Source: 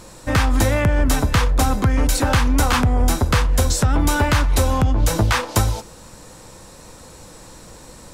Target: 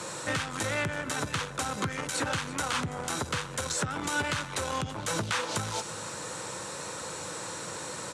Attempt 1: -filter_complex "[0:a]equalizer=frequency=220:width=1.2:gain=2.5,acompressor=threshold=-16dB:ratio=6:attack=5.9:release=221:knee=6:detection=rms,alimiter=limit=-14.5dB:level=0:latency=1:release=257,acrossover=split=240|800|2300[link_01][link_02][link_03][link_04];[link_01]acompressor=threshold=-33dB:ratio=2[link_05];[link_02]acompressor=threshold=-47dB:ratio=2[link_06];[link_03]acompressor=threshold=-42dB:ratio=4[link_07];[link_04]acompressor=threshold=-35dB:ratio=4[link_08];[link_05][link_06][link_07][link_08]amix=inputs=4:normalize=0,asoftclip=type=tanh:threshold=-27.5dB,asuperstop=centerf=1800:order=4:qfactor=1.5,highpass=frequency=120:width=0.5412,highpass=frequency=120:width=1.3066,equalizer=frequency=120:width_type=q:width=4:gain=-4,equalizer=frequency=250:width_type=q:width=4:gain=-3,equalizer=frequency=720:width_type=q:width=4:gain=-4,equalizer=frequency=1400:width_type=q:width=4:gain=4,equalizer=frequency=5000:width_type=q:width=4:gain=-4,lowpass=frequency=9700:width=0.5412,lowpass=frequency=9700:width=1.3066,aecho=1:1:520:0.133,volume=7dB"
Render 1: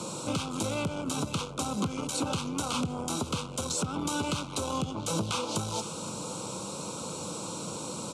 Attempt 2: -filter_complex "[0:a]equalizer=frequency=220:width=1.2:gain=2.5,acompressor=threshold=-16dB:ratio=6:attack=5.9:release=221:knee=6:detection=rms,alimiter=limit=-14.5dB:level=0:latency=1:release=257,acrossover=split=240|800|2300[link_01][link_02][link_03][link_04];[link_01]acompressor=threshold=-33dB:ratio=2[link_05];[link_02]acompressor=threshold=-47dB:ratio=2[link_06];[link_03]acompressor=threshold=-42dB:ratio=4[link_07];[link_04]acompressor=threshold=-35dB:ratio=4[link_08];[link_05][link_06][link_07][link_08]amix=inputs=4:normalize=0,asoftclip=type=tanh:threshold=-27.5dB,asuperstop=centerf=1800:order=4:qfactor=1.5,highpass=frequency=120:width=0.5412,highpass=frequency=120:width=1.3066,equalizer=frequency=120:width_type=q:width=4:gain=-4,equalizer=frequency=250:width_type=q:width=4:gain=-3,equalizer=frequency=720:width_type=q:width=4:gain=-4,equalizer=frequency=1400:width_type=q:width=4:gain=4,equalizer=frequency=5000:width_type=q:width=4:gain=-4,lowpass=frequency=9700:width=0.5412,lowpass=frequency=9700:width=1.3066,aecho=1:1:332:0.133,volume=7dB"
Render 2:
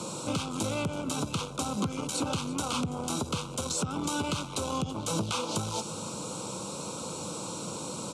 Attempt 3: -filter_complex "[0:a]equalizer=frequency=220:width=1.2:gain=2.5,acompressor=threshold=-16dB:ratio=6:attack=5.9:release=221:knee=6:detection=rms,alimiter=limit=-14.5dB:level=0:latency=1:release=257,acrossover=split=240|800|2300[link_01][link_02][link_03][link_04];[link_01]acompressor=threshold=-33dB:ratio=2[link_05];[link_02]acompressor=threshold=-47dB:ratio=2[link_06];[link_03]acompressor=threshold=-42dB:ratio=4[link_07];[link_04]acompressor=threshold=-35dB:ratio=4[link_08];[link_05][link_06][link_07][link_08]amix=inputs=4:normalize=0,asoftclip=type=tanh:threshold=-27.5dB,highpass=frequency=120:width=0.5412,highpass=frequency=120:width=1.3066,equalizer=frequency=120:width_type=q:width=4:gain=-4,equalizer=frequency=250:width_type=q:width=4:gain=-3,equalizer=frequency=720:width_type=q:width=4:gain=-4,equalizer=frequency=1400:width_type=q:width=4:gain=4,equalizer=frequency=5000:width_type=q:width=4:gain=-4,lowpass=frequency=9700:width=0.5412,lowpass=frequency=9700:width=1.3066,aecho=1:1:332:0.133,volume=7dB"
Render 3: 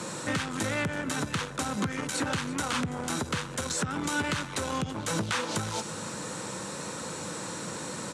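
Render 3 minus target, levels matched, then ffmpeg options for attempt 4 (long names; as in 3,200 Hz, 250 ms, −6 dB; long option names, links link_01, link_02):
250 Hz band +4.5 dB
-filter_complex "[0:a]equalizer=frequency=220:width=1.2:gain=-7.5,acompressor=threshold=-16dB:ratio=6:attack=5.9:release=221:knee=6:detection=rms,alimiter=limit=-14.5dB:level=0:latency=1:release=257,acrossover=split=240|800|2300[link_01][link_02][link_03][link_04];[link_01]acompressor=threshold=-33dB:ratio=2[link_05];[link_02]acompressor=threshold=-47dB:ratio=2[link_06];[link_03]acompressor=threshold=-42dB:ratio=4[link_07];[link_04]acompressor=threshold=-35dB:ratio=4[link_08];[link_05][link_06][link_07][link_08]amix=inputs=4:normalize=0,asoftclip=type=tanh:threshold=-27.5dB,highpass=frequency=120:width=0.5412,highpass=frequency=120:width=1.3066,equalizer=frequency=120:width_type=q:width=4:gain=-4,equalizer=frequency=250:width_type=q:width=4:gain=-3,equalizer=frequency=720:width_type=q:width=4:gain=-4,equalizer=frequency=1400:width_type=q:width=4:gain=4,equalizer=frequency=5000:width_type=q:width=4:gain=-4,lowpass=frequency=9700:width=0.5412,lowpass=frequency=9700:width=1.3066,aecho=1:1:332:0.133,volume=7dB"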